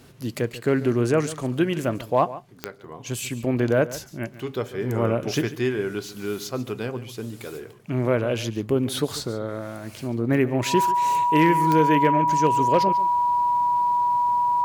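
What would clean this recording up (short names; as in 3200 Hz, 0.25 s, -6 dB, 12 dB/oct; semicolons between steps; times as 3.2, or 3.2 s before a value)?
clip repair -9 dBFS; de-click; notch 970 Hz, Q 30; inverse comb 0.142 s -16 dB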